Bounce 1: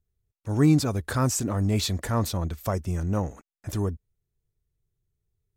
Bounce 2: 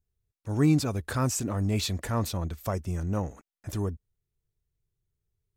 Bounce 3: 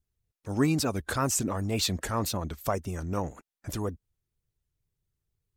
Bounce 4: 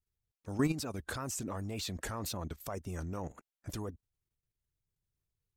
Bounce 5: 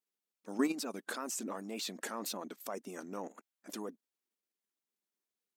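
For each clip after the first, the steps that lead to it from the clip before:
dynamic EQ 2600 Hz, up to +4 dB, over -52 dBFS, Q 4.1; gain -3 dB
wow and flutter 82 cents; harmonic-percussive split percussive +9 dB; gain -5 dB
level quantiser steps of 12 dB; gain -2.5 dB
brick-wall FIR high-pass 190 Hz

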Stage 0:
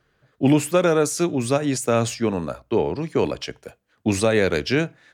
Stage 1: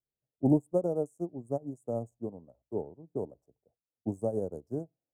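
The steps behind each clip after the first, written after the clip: Wiener smoothing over 15 samples; Chebyshev band-stop 750–8200 Hz, order 3; upward expander 2.5:1, over -31 dBFS; gain -5 dB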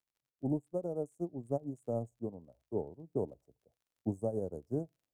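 low shelf 83 Hz +6.5 dB; vocal rider within 5 dB 0.5 s; crackle 39/s -59 dBFS; gain -5 dB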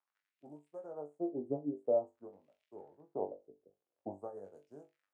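compressor 1.5:1, threshold -41 dBFS, peak gain reduction 5 dB; wah 0.48 Hz 340–2600 Hz, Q 2.3; on a send: flutter echo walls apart 3.5 m, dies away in 0.21 s; on the sum: gain +9 dB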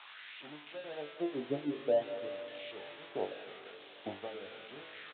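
switching spikes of -28.5 dBFS; on a send at -11 dB: reverb RT60 2.6 s, pre-delay 0.138 s; on the sum: downsampling 8000 Hz; gain +1 dB

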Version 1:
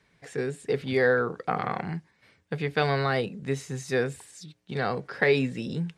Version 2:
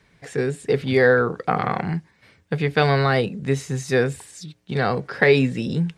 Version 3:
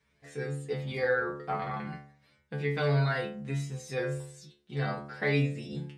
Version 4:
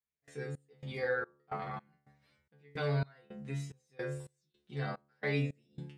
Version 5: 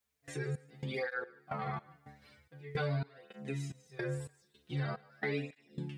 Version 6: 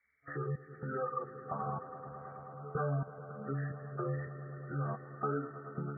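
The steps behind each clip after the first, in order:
low shelf 140 Hz +5 dB; gain +6 dB
metallic resonator 70 Hz, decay 0.68 s, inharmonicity 0.002
step gate "..xx..xxx" 109 bpm -24 dB; gain -5.5 dB
compressor 3:1, threshold -48 dBFS, peak gain reduction 15 dB; thinning echo 0.149 s, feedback 33%, high-pass 290 Hz, level -21 dB; tape flanging out of phase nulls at 0.45 Hz, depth 6.5 ms; gain +13.5 dB
nonlinear frequency compression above 1100 Hz 4:1; swelling echo 0.108 s, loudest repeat 5, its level -17 dB; spectral gate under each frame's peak -30 dB strong

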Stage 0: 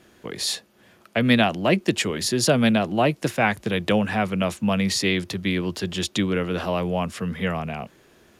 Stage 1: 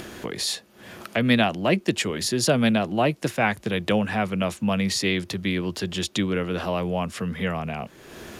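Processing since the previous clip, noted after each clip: upward compressor, threshold -23 dBFS; gain -1.5 dB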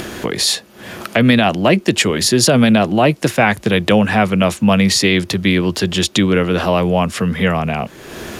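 maximiser +12 dB; gain -1 dB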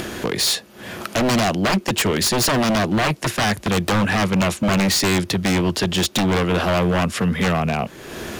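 wavefolder -11.5 dBFS; gain -1.5 dB

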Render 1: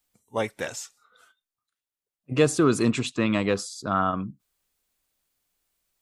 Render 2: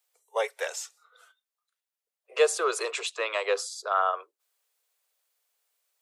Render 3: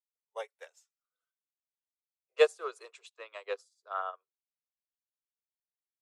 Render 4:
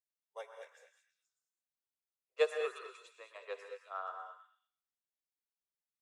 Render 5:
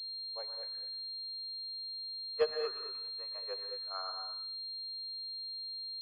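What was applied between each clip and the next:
steep high-pass 420 Hz 72 dB/oct
upward expander 2.5:1, over -41 dBFS
notch 3000 Hz, Q 13; delay with a stepping band-pass 0.119 s, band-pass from 1400 Hz, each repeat 0.7 oct, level -7 dB; non-linear reverb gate 0.24 s rising, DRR 6 dB; gain -7 dB
pulse-width modulation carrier 4200 Hz

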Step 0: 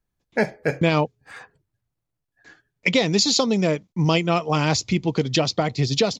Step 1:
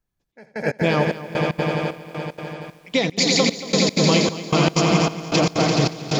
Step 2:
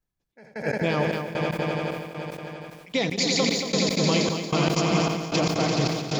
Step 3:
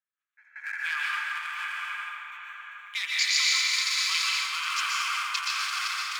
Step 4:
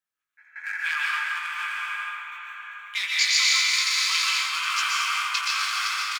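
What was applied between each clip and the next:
swelling echo 85 ms, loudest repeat 5, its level -6 dB; step gate "xxxx...xx." 189 bpm -24 dB; lo-fi delay 0.231 s, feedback 35%, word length 7-bit, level -15 dB; gain -1 dB
sustainer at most 46 dB/s; gain -5.5 dB
Wiener smoothing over 9 samples; steep high-pass 1200 Hz 48 dB/oct; plate-style reverb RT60 1.8 s, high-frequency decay 0.55×, pre-delay 0.11 s, DRR -4.5 dB
doubler 19 ms -5.5 dB; gain +2.5 dB

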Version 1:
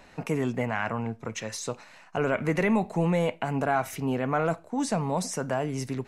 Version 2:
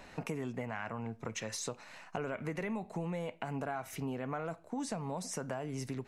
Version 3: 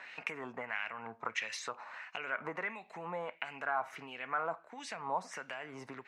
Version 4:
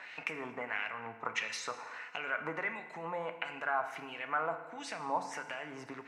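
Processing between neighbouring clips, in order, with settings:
compressor 5:1, threshold -36 dBFS, peak gain reduction 14.5 dB
LFO band-pass sine 1.5 Hz 980–2600 Hz; gain +11 dB
FDN reverb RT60 1.3 s, low-frequency decay 1×, high-frequency decay 0.8×, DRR 8 dB; gain +1 dB

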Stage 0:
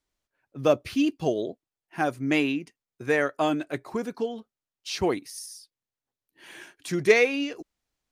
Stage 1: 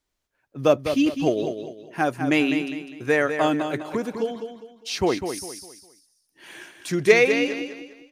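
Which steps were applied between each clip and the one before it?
feedback echo 0.202 s, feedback 34%, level -8 dB; gain +3 dB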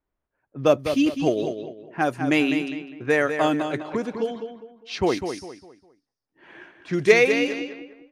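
low-pass opened by the level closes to 1400 Hz, open at -19 dBFS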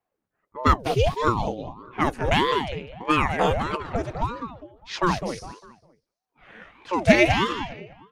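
ring modulator with a swept carrier 440 Hz, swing 75%, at 1.6 Hz; gain +2.5 dB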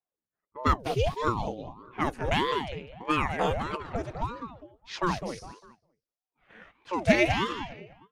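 gate -48 dBFS, range -9 dB; gain -5.5 dB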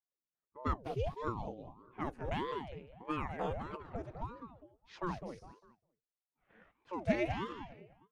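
high shelf 2000 Hz -11 dB; gain -9 dB

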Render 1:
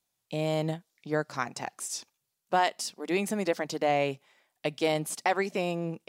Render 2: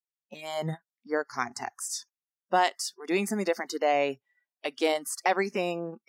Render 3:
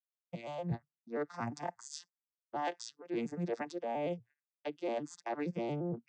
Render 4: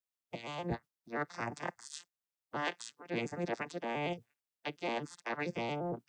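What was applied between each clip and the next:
spectral noise reduction 27 dB; gain +1.5 dB
arpeggiated vocoder major triad, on A#2, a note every 0.116 s; expander -52 dBFS; reverse; compressor 10:1, threshold -34 dBFS, peak gain reduction 14.5 dB; reverse; gain +1 dB
spectral limiter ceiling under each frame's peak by 17 dB

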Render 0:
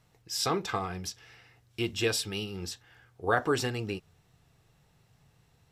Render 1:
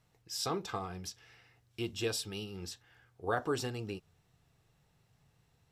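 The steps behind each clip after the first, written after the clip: dynamic EQ 2000 Hz, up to -6 dB, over -48 dBFS, Q 1.8; gain -5.5 dB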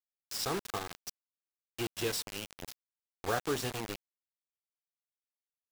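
bit-crush 6-bit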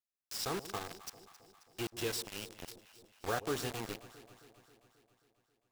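echo with dull and thin repeats by turns 0.134 s, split 810 Hz, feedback 77%, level -14 dB; gain -3 dB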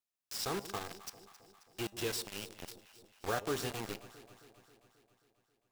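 resonator 200 Hz, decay 0.3 s, harmonics all, mix 40%; gain +4 dB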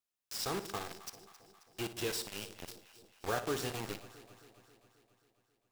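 flutter echo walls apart 10 m, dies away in 0.28 s

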